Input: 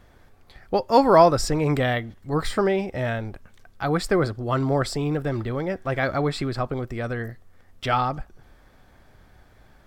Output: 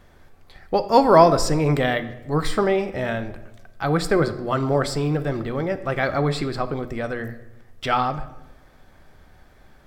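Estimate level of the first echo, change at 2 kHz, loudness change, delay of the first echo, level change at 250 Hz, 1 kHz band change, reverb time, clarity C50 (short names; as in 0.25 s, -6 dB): none, +2.0 dB, +1.5 dB, none, +1.5 dB, +2.0 dB, 1.0 s, 13.5 dB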